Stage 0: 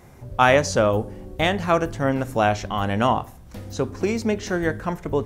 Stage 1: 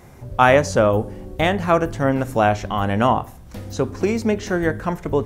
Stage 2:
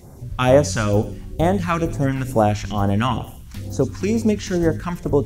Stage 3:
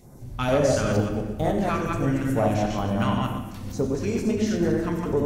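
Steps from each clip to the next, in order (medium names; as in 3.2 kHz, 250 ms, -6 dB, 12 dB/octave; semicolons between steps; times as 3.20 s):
dynamic bell 4.7 kHz, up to -6 dB, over -38 dBFS, Q 0.75; trim +3 dB
phase shifter stages 2, 2.2 Hz, lowest notch 460–2700 Hz; feedback echo behind a high-pass 96 ms, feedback 42%, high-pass 3 kHz, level -9 dB; trim +2.5 dB
chunks repeated in reverse 121 ms, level -2.5 dB; saturation -8 dBFS, distortion -17 dB; on a send at -2.5 dB: reverberation RT60 1.2 s, pre-delay 4 ms; on the sum: trim -7 dB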